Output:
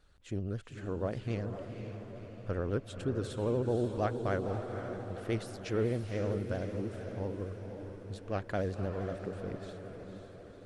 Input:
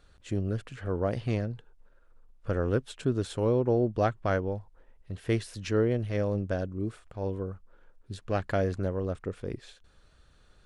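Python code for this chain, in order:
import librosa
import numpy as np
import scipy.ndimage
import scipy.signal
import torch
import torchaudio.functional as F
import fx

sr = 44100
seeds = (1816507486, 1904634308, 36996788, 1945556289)

y = fx.echo_diffused(x, sr, ms=512, feedback_pct=58, wet_db=-7.0)
y = fx.vibrato(y, sr, rate_hz=13.0, depth_cents=79.0)
y = y * 10.0 ** (-6.0 / 20.0)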